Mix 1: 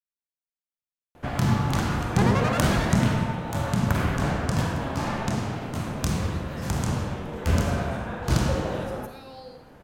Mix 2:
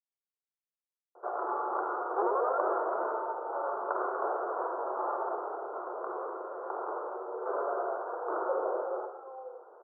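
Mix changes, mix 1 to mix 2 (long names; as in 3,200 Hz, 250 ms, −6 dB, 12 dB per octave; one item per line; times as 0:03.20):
second sound: send off
master: add Chebyshev band-pass filter 360–1,400 Hz, order 5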